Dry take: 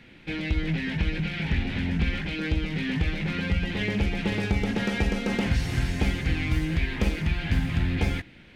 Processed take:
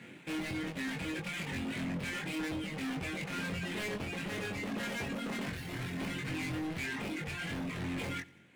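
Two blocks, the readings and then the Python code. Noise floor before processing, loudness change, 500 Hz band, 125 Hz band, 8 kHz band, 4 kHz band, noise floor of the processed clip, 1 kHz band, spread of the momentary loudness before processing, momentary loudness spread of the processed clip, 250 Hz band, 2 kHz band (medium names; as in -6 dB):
-50 dBFS, -10.0 dB, -7.5 dB, -14.5 dB, -1.5 dB, -7.5 dB, -52 dBFS, -5.0 dB, 3 LU, 2 LU, -9.0 dB, -7.0 dB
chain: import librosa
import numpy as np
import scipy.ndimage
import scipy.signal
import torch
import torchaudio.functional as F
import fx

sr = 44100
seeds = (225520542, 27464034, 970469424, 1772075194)

p1 = scipy.ndimage.median_filter(x, 9, mode='constant')
p2 = fx.dereverb_blind(p1, sr, rt60_s=1.6)
p3 = scipy.signal.sosfilt(scipy.signal.butter(4, 120.0, 'highpass', fs=sr, output='sos'), p2)
p4 = fx.over_compress(p3, sr, threshold_db=-31.0, ratio=-1.0)
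p5 = p3 + (p4 * 10.0 ** (1.5 / 20.0))
p6 = np.clip(p5, -10.0 ** (-30.0 / 20.0), 10.0 ** (-30.0 / 20.0))
p7 = fx.doubler(p6, sr, ms=22.0, db=-3.5)
p8 = p7 + fx.echo_feedback(p7, sr, ms=91, feedback_pct=56, wet_db=-23, dry=0)
y = p8 * 10.0 ** (-7.0 / 20.0)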